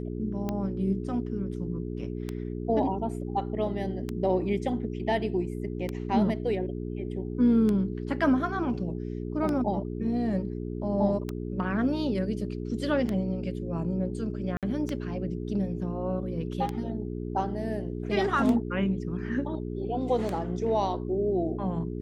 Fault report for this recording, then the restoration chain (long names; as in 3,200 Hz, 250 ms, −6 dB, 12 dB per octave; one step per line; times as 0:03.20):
mains hum 60 Hz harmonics 7 −34 dBFS
scratch tick 33 1/3 rpm −18 dBFS
0:14.57–0:14.63: drop-out 57 ms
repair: click removal
hum removal 60 Hz, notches 7
repair the gap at 0:14.57, 57 ms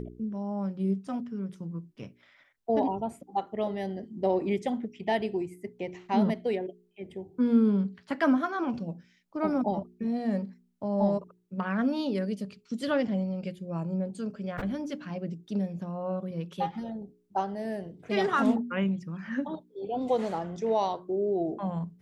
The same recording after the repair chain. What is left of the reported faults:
none of them is left